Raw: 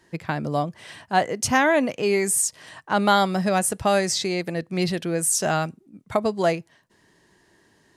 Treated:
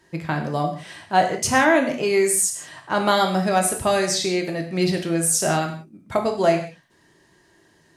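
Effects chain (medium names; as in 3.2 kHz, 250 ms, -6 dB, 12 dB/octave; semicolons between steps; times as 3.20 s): gated-style reverb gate 210 ms falling, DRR 2.5 dB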